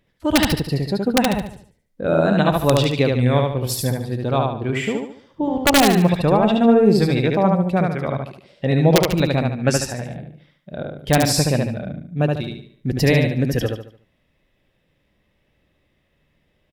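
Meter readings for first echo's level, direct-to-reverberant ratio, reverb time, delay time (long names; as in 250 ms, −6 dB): −3.0 dB, no reverb audible, no reverb audible, 73 ms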